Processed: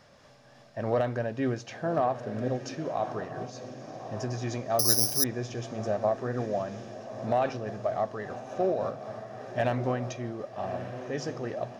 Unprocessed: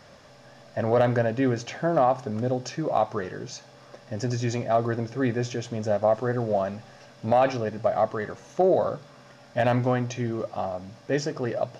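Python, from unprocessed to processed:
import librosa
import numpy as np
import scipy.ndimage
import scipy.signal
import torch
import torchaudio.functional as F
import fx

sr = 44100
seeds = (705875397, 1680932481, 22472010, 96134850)

y = fx.echo_diffused(x, sr, ms=1177, feedback_pct=51, wet_db=-10.0)
y = fx.resample_bad(y, sr, factor=8, down='none', up='zero_stuff', at=(4.79, 5.24))
y = fx.am_noise(y, sr, seeds[0], hz=5.7, depth_pct=60)
y = y * 10.0 ** (-3.5 / 20.0)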